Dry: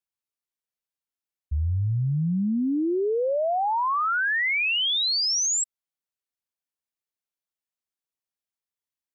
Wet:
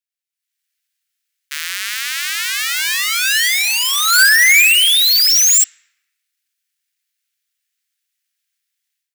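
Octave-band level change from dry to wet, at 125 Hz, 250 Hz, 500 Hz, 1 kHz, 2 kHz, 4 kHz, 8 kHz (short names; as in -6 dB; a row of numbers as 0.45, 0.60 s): under -40 dB, under -40 dB, under -35 dB, 0.0 dB, +14.5 dB, +13.0 dB, n/a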